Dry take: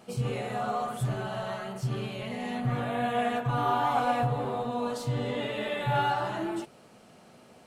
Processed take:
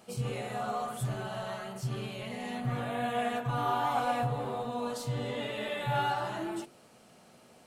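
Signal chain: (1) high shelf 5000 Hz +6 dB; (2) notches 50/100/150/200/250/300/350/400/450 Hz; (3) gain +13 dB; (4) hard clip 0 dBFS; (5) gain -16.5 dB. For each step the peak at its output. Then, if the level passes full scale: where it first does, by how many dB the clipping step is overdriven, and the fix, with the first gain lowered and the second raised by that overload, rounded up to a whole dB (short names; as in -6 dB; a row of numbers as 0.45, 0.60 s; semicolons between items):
-15.0, -15.0, -2.0, -2.0, -18.5 dBFS; no overload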